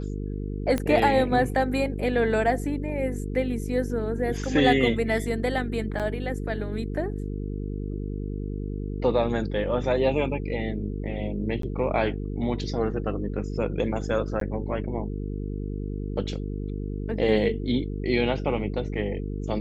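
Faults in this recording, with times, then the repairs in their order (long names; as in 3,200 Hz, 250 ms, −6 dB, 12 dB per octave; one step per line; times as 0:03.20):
mains buzz 50 Hz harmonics 9 −31 dBFS
0:00.78: click −13 dBFS
0:05.99–0:06.00: drop-out 7.2 ms
0:11.62–0:11.63: drop-out 13 ms
0:14.40–0:14.41: drop-out 13 ms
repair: click removal
hum removal 50 Hz, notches 9
repair the gap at 0:05.99, 7.2 ms
repair the gap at 0:11.62, 13 ms
repair the gap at 0:14.40, 13 ms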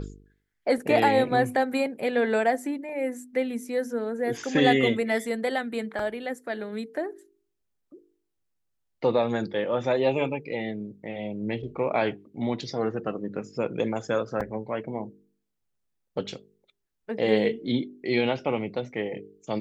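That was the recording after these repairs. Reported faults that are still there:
none of them is left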